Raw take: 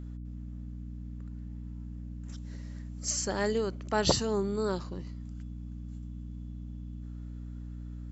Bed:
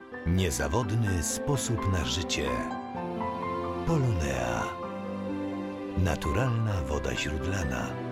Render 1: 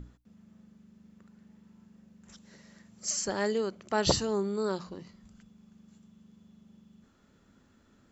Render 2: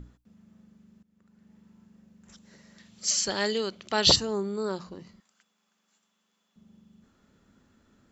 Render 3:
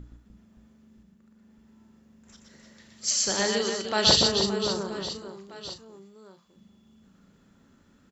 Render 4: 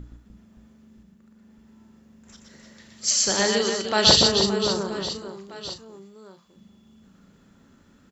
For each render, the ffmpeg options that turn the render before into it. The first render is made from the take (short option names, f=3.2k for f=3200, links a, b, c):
-af "bandreject=f=60:t=h:w=6,bandreject=f=120:t=h:w=6,bandreject=f=180:t=h:w=6,bandreject=f=240:t=h:w=6,bandreject=f=300:t=h:w=6"
-filter_complex "[0:a]asettb=1/sr,asplit=3[a][b][c];[a]atrim=end=2.784[d];[b]atrim=start=2.78:end=4.16,asetpts=PTS-STARTPTS,afade=t=in:d=0.004:c=qsin,afade=t=out:st=1.376:d=0.004:c=qsin,equalizer=f=3.6k:t=o:w=1.4:g=13.5[e];[c]atrim=start=4.156[f];[d][e]acrossfade=d=0.004:c1=hsin:c2=qsin[g];[g][f]acrossfade=d=0.004:c1=qsin:c2=hsin,asettb=1/sr,asplit=3[h][i][j];[h]atrim=end=5.204[k];[i]atrim=start=5.2:end=6.56,asetpts=PTS-STARTPTS,afade=t=in:d=0.004:c=qsin,afade=t=out:st=1.356:d=0.004:c=qsin,highpass=850[l];[j]atrim=start=6.556[m];[k][l]acrossfade=d=0.004:c1=hsin:c2=qsin[n];[n][m]acrossfade=d=0.004:c1=qsin:c2=hsin,asplit=2[o][p];[o]atrim=end=1.03,asetpts=PTS-STARTPTS,afade=t=out:st=1.026:d=0.004:c=hsin:silence=0.112202[q];[p]atrim=start=1.03,asetpts=PTS-STARTPTS,afade=t=in:d=0.54:silence=0.112202[r];[q][r]concat=n=2:v=0:a=1"
-filter_complex "[0:a]asplit=2[a][b];[b]adelay=36,volume=-10.5dB[c];[a][c]amix=inputs=2:normalize=0,aecho=1:1:120|300|570|975|1582:0.631|0.398|0.251|0.158|0.1"
-af "volume=4dB,alimiter=limit=-2dB:level=0:latency=1"